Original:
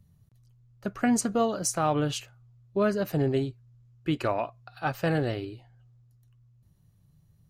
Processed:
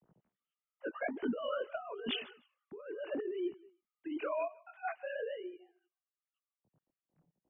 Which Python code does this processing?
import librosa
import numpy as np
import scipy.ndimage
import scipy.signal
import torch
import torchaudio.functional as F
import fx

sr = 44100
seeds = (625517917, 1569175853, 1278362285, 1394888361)

p1 = fx.sine_speech(x, sr)
p2 = fx.doppler_pass(p1, sr, speed_mps=5, closest_m=2.4, pass_at_s=2.33)
p3 = p2 + fx.echo_feedback(p2, sr, ms=155, feedback_pct=20, wet_db=-24, dry=0)
p4 = fx.chorus_voices(p3, sr, voices=2, hz=0.86, base_ms=21, depth_ms=5.0, mix_pct=55)
p5 = fx.over_compress(p4, sr, threshold_db=-43.0, ratio=-1.0)
p6 = fx.low_shelf(p5, sr, hz=330.0, db=5.5)
y = p6 * librosa.db_to_amplitude(2.5)